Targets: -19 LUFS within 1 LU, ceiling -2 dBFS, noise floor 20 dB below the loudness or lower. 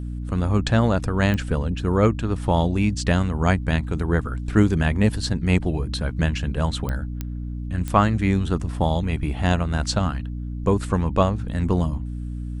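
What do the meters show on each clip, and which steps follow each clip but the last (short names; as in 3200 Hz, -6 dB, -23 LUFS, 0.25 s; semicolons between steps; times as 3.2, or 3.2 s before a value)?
clicks 4; hum 60 Hz; harmonics up to 300 Hz; hum level -27 dBFS; loudness -23.0 LUFS; peak -3.5 dBFS; loudness target -19.0 LUFS
-> de-click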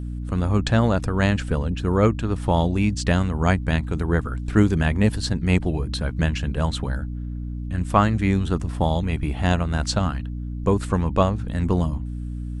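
clicks 0; hum 60 Hz; harmonics up to 300 Hz; hum level -27 dBFS
-> notches 60/120/180/240/300 Hz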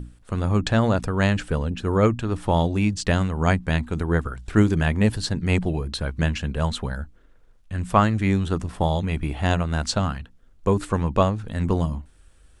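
hum none; loudness -23.5 LUFS; peak -4.0 dBFS; loudness target -19.0 LUFS
-> gain +4.5 dB; limiter -2 dBFS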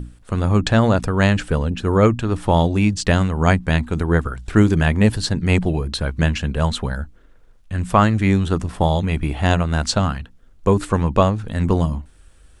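loudness -19.0 LUFS; peak -2.0 dBFS; noise floor -49 dBFS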